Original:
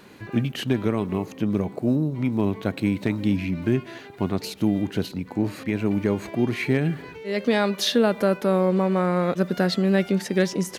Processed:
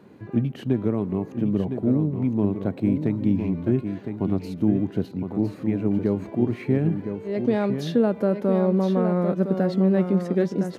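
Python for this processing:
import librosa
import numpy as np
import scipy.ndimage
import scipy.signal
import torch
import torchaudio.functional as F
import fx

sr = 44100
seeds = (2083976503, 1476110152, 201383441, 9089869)

y = scipy.signal.sosfilt(scipy.signal.butter(2, 82.0, 'highpass', fs=sr, output='sos'), x)
y = fx.tilt_shelf(y, sr, db=9.0, hz=1200.0)
y = y + 10.0 ** (-7.5 / 20.0) * np.pad(y, (int(1011 * sr / 1000.0), 0))[:len(y)]
y = F.gain(torch.from_numpy(y), -7.5).numpy()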